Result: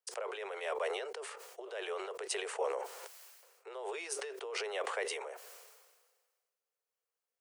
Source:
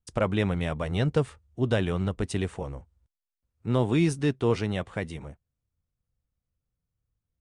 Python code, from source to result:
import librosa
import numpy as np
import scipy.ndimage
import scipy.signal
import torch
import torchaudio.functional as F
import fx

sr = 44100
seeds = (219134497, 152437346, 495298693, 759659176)

y = fx.over_compress(x, sr, threshold_db=-31.0, ratio=-1.0)
y = scipy.signal.sosfilt(scipy.signal.butter(16, 400.0, 'highpass', fs=sr, output='sos'), y)
y = fx.peak_eq(y, sr, hz=3600.0, db=-5.5, octaves=0.2)
y = fx.sustainer(y, sr, db_per_s=38.0)
y = y * librosa.db_to_amplitude(-3.0)